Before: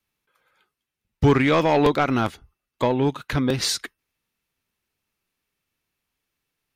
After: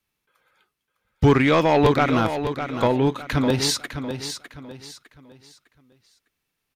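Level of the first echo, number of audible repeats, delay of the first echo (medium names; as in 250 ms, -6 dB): -9.0 dB, 3, 605 ms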